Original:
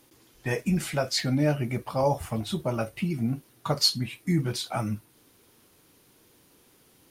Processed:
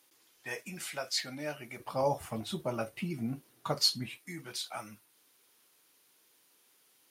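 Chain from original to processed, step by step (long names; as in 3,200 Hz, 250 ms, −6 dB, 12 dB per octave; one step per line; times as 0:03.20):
high-pass filter 1,200 Hz 6 dB per octave, from 0:01.80 210 Hz, from 0:04.18 1,300 Hz
level −4.5 dB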